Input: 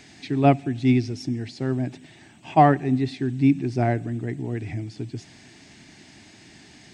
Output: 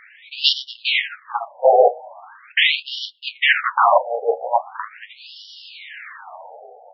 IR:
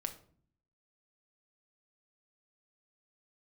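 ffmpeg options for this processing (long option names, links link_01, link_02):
-filter_complex "[0:a]aeval=exprs='val(0)+0.5*0.1*sgn(val(0))':channel_layout=same,highpass=41,aemphasis=mode=reproduction:type=75fm,asettb=1/sr,asplit=3[link_01][link_02][link_03];[link_01]atrim=end=0.924[link_04];[link_02]atrim=start=0.92:end=1.7,asetpts=PTS-STARTPTS,afade=type=in:duration=0.004:curve=qsin,afade=type=out:start_time=0.776:duration=0.004:curve=qsin,bandreject=frequency=50:width_type=h:width=6,bandreject=frequency=100:width_type=h:width=6,bandreject=frequency=150:width_type=h:width=6,bandreject=frequency=200:width_type=h:width=6,bandreject=frequency=250:width_type=h:width=6,bandreject=frequency=300:width_type=h:width=6[link_05];[link_03]atrim=start=1.696[link_06];[link_04][link_05]acrossfade=duration=0.004:curve1=hsin:curve2=qsin[link_07];[link_07][link_06]acrossfade=duration=0.004:curve1=qsin:curve2=hsin,agate=range=-33dB:threshold=-18dB:ratio=16:detection=peak,dynaudnorm=framelen=170:gausssize=5:maxgain=11dB,flanger=delay=7.7:depth=3.2:regen=30:speed=1.5:shape=sinusoidal,asplit=3[link_08][link_09][link_10];[link_08]afade=type=out:start_time=2.51:duration=0.02[link_11];[link_09]adynamicsmooth=sensitivity=4.5:basefreq=1200,afade=type=in:start_time=2.51:duration=0.02,afade=type=out:start_time=4.64:duration=0.02[link_12];[link_10]afade=type=in:start_time=4.64:duration=0.02[link_13];[link_11][link_12][link_13]amix=inputs=3:normalize=0,aeval=exprs='0.596*sin(PI/2*10*val(0)/0.596)':channel_layout=same,asplit=2[link_14][link_15];[1:a]atrim=start_sample=2205,afade=type=out:start_time=0.19:duration=0.01,atrim=end_sample=8820,lowpass=2000[link_16];[link_15][link_16]afir=irnorm=-1:irlink=0,volume=-9dB[link_17];[link_14][link_17]amix=inputs=2:normalize=0,afftfilt=real='re*between(b*sr/1024,590*pow(4100/590,0.5+0.5*sin(2*PI*0.41*pts/sr))/1.41,590*pow(4100/590,0.5+0.5*sin(2*PI*0.41*pts/sr))*1.41)':imag='im*between(b*sr/1024,590*pow(4100/590,0.5+0.5*sin(2*PI*0.41*pts/sr))/1.41,590*pow(4100/590,0.5+0.5*sin(2*PI*0.41*pts/sr))*1.41)':win_size=1024:overlap=0.75"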